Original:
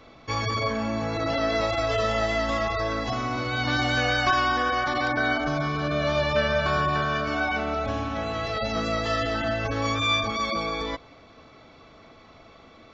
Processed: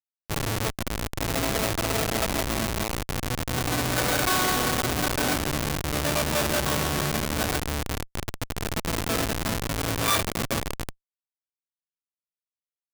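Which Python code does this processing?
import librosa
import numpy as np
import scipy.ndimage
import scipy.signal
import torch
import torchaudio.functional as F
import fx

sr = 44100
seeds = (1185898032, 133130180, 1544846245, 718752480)

y = fx.schmitt(x, sr, flips_db=-21.0)
y = fx.tilt_eq(y, sr, slope=2.0)
y = y * 10.0 ** (4.0 / 20.0)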